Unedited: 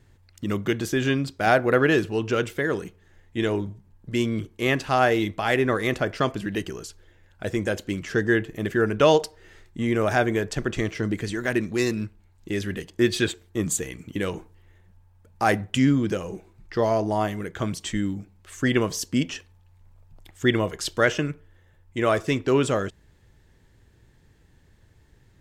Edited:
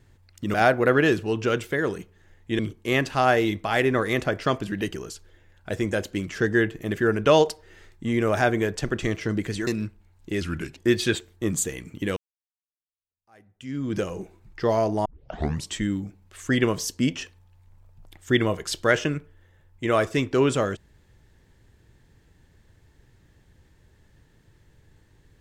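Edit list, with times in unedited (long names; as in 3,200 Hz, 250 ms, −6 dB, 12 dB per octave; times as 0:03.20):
0:00.54–0:01.40: remove
0:03.45–0:04.33: remove
0:11.41–0:11.86: remove
0:12.60–0:12.91: play speed 85%
0:14.30–0:16.10: fade in exponential
0:17.19: tape start 0.63 s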